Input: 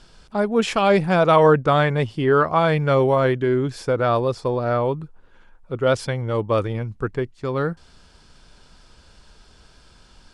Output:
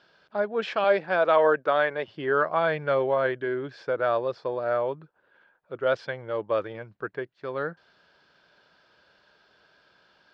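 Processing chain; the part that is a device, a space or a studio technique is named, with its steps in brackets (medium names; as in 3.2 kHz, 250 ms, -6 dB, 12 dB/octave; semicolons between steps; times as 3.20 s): 0.84–2.08 s: high-pass 250 Hz 12 dB/octave; kitchen radio (cabinet simulation 220–4500 Hz, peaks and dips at 240 Hz -7 dB, 600 Hz +6 dB, 1.6 kHz +8 dB); trim -8 dB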